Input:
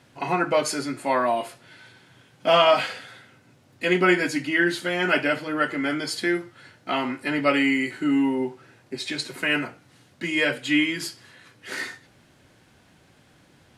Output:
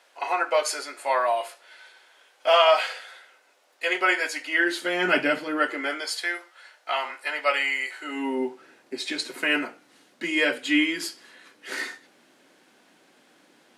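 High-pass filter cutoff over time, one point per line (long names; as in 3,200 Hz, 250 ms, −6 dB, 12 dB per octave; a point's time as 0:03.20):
high-pass filter 24 dB per octave
0:04.43 500 Hz
0:05.23 160 Hz
0:06.18 580 Hz
0:07.99 580 Hz
0:08.41 240 Hz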